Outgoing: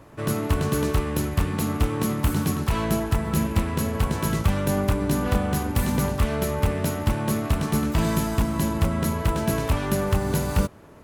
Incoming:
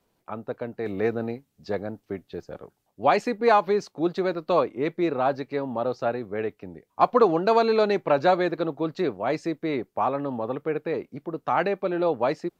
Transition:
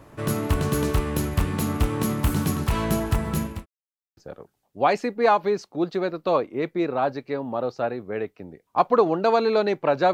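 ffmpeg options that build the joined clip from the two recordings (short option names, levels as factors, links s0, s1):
-filter_complex "[0:a]apad=whole_dur=10.13,atrim=end=10.13,asplit=2[s0][s1];[s0]atrim=end=3.66,asetpts=PTS-STARTPTS,afade=t=out:st=3.12:d=0.54:c=qsin[s2];[s1]atrim=start=3.66:end=4.17,asetpts=PTS-STARTPTS,volume=0[s3];[1:a]atrim=start=2.4:end=8.36,asetpts=PTS-STARTPTS,afade=t=in:d=0.004:c=hsin[s4];[s2][s3][s4]concat=n=3:v=0:a=1"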